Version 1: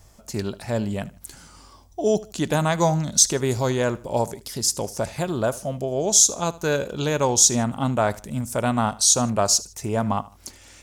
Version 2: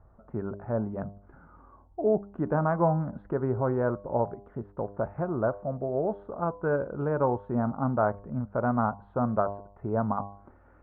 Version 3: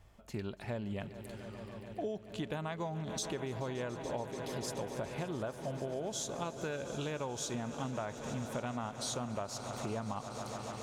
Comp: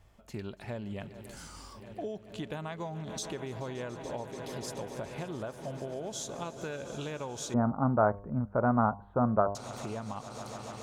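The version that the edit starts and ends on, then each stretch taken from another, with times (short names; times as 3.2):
3
1.34–1.77 from 1, crossfade 0.10 s
7.54–9.55 from 2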